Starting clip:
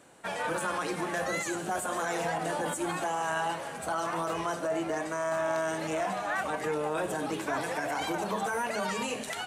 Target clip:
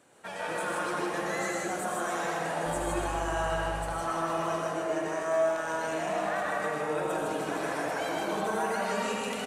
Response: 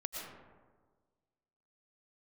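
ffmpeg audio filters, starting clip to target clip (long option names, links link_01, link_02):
-filter_complex "[0:a]lowshelf=frequency=61:gain=-7,asettb=1/sr,asplit=3[link_01][link_02][link_03];[link_01]atrim=end=2.664[link_04];[link_02]atrim=start=2.66:end=3.85,asetpts=PTS-STARTPTS,afade=type=in:duration=0.004:curve=qsin,afade=type=out:start_time=1.186:duration=0.004:curve=qsin,aeval=exprs='val(0)+0.00891*(sin(2*PI*50*n/s)+sin(2*PI*2*50*n/s)/2+sin(2*PI*3*50*n/s)/3+sin(2*PI*4*50*n/s)/4+sin(2*PI*5*50*n/s)/5)':channel_layout=same[link_05];[link_03]atrim=start=3.846[link_06];[link_04][link_05]acrossfade=duration=0.004:curve1=hsin:curve2=qsin[link_07];[link_07][link_06]acrossfade=duration=0.004:curve1=qsin:curve2=hsin,aecho=1:1:78.72|157.4:0.316|0.708[link_08];[1:a]atrim=start_sample=2205[link_09];[link_08][link_09]afir=irnorm=-1:irlink=0,volume=-2dB"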